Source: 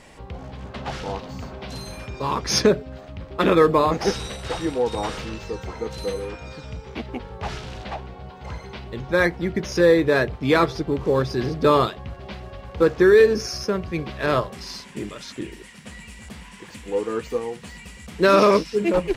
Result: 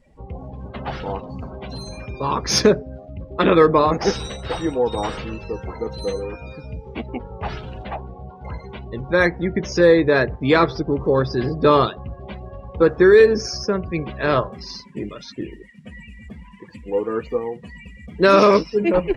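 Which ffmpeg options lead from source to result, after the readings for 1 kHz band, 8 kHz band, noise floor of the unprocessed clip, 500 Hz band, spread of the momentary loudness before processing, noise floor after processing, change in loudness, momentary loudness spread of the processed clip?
+2.5 dB, +1.5 dB, -43 dBFS, +2.5 dB, 21 LU, -43 dBFS, +2.5 dB, 21 LU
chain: -af "afftdn=nr=24:nf=-39,volume=1.33"

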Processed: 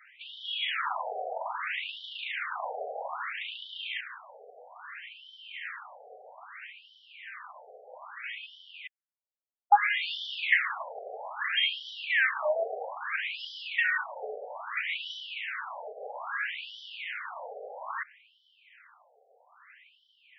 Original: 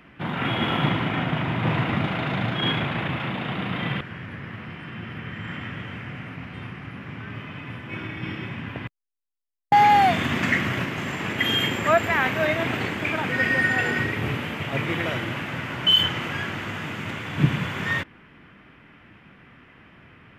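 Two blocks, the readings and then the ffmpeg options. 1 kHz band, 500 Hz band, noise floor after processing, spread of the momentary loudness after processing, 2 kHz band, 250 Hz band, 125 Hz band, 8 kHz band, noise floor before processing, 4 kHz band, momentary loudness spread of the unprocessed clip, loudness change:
-9.0 dB, -8.5 dB, -68 dBFS, 21 LU, -5.5 dB, under -40 dB, under -40 dB, under -20 dB, -52 dBFS, -9.0 dB, 17 LU, -8.0 dB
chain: -af "afftfilt=real='re*between(b*sr/1024,560*pow(4200/560,0.5+0.5*sin(2*PI*0.61*pts/sr))/1.41,560*pow(4200/560,0.5+0.5*sin(2*PI*0.61*pts/sr))*1.41)':imag='im*between(b*sr/1024,560*pow(4200/560,0.5+0.5*sin(2*PI*0.61*pts/sr))/1.41,560*pow(4200/560,0.5+0.5*sin(2*PI*0.61*pts/sr))*1.41)':win_size=1024:overlap=0.75"

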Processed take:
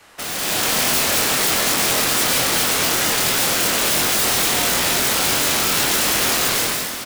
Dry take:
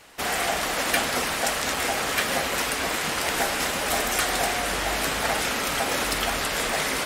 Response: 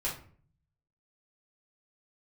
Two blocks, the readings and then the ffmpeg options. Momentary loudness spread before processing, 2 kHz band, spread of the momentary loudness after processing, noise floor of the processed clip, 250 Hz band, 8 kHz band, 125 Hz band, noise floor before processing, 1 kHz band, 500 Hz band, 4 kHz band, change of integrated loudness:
2 LU, +3.5 dB, 2 LU, -27 dBFS, +6.0 dB, +10.5 dB, +6.5 dB, -28 dBFS, +2.5 dB, +3.0 dB, +8.5 dB, +8.0 dB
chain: -filter_complex "[0:a]equalizer=f=1300:t=o:w=0.62:g=3.5,aeval=exprs='(mod(11.2*val(0)+1,2)-1)/11.2':c=same,acrossover=split=100|600|2200[s0][s1][s2][s3];[s0]acompressor=threshold=0.00158:ratio=4[s4];[s1]acompressor=threshold=0.0126:ratio=4[s5];[s2]acompressor=threshold=0.0112:ratio=4[s6];[s3]acompressor=threshold=0.0398:ratio=4[s7];[s4][s5][s6][s7]amix=inputs=4:normalize=0,asplit=2[s8][s9];[s9]adelay=24,volume=0.562[s10];[s8][s10]amix=inputs=2:normalize=0,dynaudnorm=f=100:g=9:m=3.98"

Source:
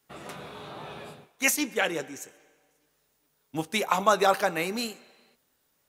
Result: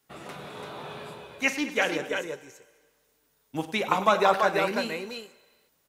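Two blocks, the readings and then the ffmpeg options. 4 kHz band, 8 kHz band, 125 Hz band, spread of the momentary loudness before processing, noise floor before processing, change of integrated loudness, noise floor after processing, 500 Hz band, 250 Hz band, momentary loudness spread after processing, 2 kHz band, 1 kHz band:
-0.5 dB, -9.5 dB, +1.0 dB, 19 LU, -72 dBFS, 0.0 dB, -70 dBFS, +1.5 dB, +1.0 dB, 19 LU, +1.5 dB, +1.5 dB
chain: -filter_complex "[0:a]acrossover=split=4600[s0][s1];[s1]acompressor=threshold=0.00355:ratio=4:attack=1:release=60[s2];[s0][s2]amix=inputs=2:normalize=0,aecho=1:1:48|100|213|336|338:0.178|0.188|0.126|0.531|0.282"

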